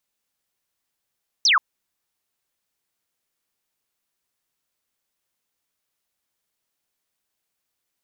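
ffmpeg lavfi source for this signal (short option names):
-f lavfi -i "aevalsrc='0.211*clip(t/0.002,0,1)*clip((0.13-t)/0.002,0,1)*sin(2*PI*6200*0.13/log(990/6200)*(exp(log(990/6200)*t/0.13)-1))':d=0.13:s=44100"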